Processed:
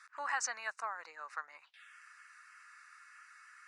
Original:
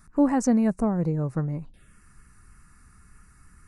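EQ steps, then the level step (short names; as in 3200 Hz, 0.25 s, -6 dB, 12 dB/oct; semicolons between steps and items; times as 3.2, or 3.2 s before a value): HPF 1400 Hz 24 dB/oct; dynamic EQ 2200 Hz, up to -5 dB, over -60 dBFS, Q 2; air absorption 140 m; +9.5 dB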